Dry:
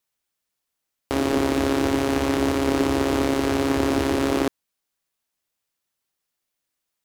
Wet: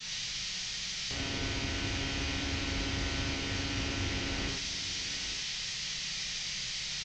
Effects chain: one-bit delta coder 32 kbps, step -28 dBFS; treble shelf 4.9 kHz +6.5 dB; delay 845 ms -13.5 dB; expander -33 dBFS; high-order bell 600 Hz -13.5 dB 2.9 oct; reverberation, pre-delay 3 ms, DRR -4.5 dB; trim -8.5 dB

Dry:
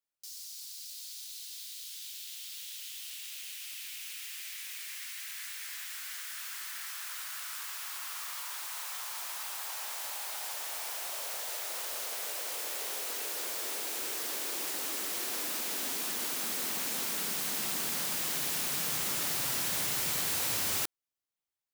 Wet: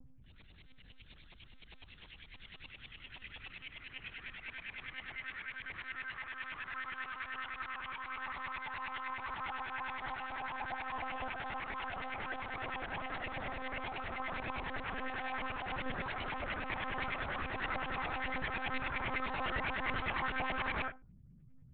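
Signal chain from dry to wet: mains buzz 60 Hz, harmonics 4, -50 dBFS -6 dB/octave; inharmonic resonator 140 Hz, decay 0.29 s, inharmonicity 0.002; flange 1.2 Hz, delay 6.1 ms, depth 8.1 ms, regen +34%; LFO low-pass saw up 9.8 Hz 790–2500 Hz; monotone LPC vocoder at 8 kHz 260 Hz; trim +15.5 dB

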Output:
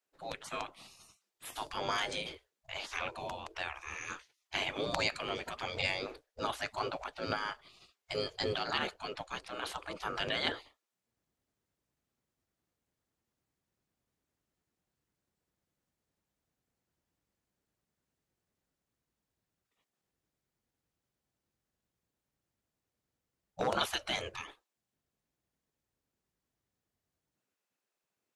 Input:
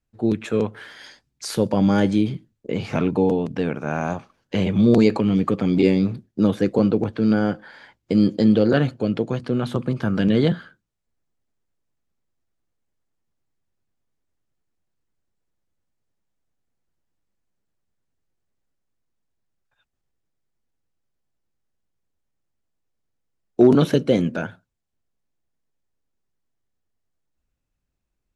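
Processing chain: spectral gate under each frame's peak -20 dB weak

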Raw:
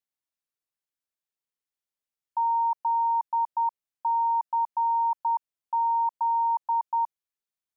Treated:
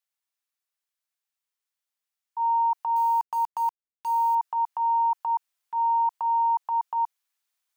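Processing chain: high-pass 820 Hz 12 dB/octave; transient shaper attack -7 dB, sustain +7 dB; 2.96–4.35 s: small samples zeroed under -41 dBFS; trim +4 dB

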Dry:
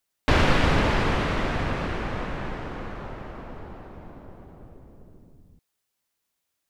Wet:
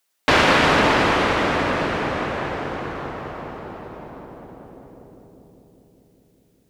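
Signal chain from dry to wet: high-pass 430 Hz 6 dB/octave; on a send: filtered feedback delay 201 ms, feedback 81%, low-pass 1.2 kHz, level -6 dB; on the sum: trim +8 dB

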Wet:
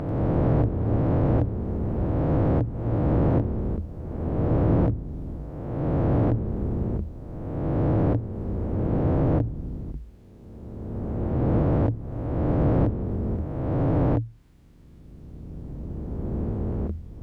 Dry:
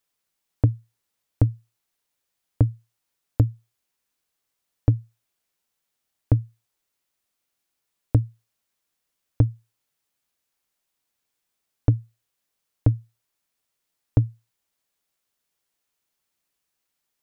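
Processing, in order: reverse spectral sustain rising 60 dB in 1.59 s; compression 6:1, threshold -23 dBFS, peak gain reduction 13 dB; overdrive pedal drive 19 dB, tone 1 kHz, clips at -14.5 dBFS; ever faster or slower copies 91 ms, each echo -6 st, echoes 3, each echo -6 dB; trim +4.5 dB

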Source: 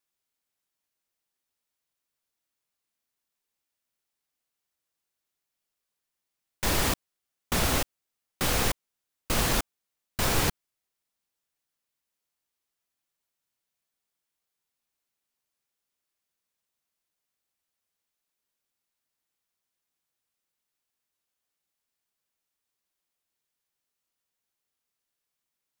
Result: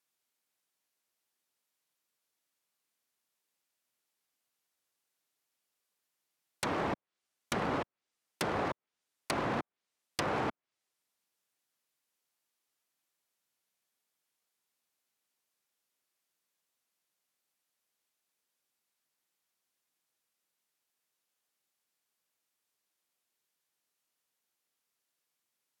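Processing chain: integer overflow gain 20 dB; low-pass that closes with the level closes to 1.2 kHz, closed at -27.5 dBFS; Bessel high-pass 170 Hz, order 2; trim +1.5 dB

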